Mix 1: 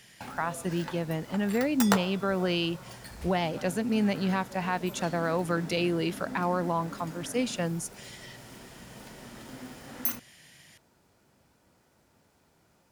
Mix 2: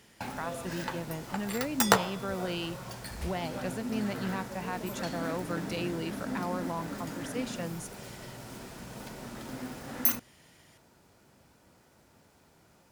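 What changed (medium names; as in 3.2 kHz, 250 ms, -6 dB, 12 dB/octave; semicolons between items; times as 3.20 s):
speech -7.0 dB; background +4.0 dB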